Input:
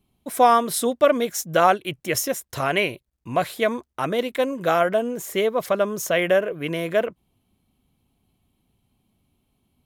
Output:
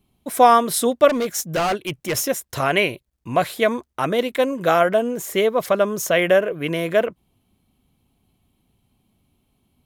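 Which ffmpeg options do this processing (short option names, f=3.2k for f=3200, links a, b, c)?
-filter_complex "[0:a]asettb=1/sr,asplit=3[a][b][c];[a]atrim=end=1.084[d];[b]atrim=start=1.08:end=2.28,asetpts=PTS-STARTPTS,afade=t=in:d=0.004:c=qsin,afade=t=out:st=1.196:d=0.004:c=qsin,asoftclip=type=hard:threshold=-21dB[e];[c]atrim=start=2.276[f];[d][e]acrossfade=d=0.004:c1=hsin:c2=qsin[g];[g][f]acrossfade=d=0.004:c1=qsin:c2=hsin,volume=3dB"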